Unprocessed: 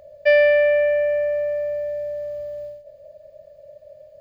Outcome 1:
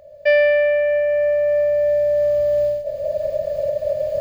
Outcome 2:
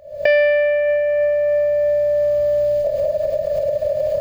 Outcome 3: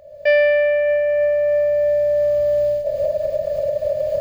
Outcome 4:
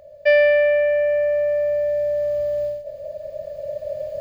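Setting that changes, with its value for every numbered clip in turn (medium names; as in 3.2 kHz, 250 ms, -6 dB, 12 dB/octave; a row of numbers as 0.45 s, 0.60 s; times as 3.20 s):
recorder AGC, rising by: 14 dB/s, 91 dB/s, 36 dB/s, 5.2 dB/s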